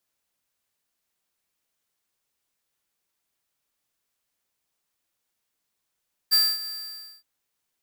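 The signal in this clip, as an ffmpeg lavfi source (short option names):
-f lavfi -i "aevalsrc='0.133*(2*lt(mod(4710*t,1),0.5)-1)':d=0.919:s=44100,afade=t=in:d=0.024,afade=t=out:st=0.024:d=0.242:silence=0.158,afade=t=out:st=0.36:d=0.559"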